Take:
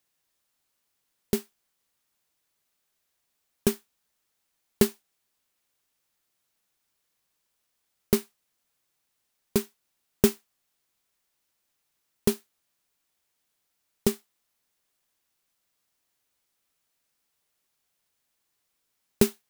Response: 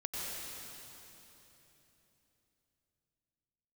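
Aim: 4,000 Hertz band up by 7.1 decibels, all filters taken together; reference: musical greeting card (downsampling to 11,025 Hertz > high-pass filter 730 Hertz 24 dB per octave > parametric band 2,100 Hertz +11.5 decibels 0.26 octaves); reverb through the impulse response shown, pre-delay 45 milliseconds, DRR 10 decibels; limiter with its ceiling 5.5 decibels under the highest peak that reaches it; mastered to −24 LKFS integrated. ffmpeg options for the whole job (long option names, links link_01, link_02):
-filter_complex "[0:a]equalizer=frequency=4000:width_type=o:gain=8.5,alimiter=limit=-8dB:level=0:latency=1,asplit=2[link_01][link_02];[1:a]atrim=start_sample=2205,adelay=45[link_03];[link_02][link_03]afir=irnorm=-1:irlink=0,volume=-13dB[link_04];[link_01][link_04]amix=inputs=2:normalize=0,aresample=11025,aresample=44100,highpass=frequency=730:width=0.5412,highpass=frequency=730:width=1.3066,equalizer=frequency=2100:width_type=o:width=0.26:gain=11.5,volume=14.5dB"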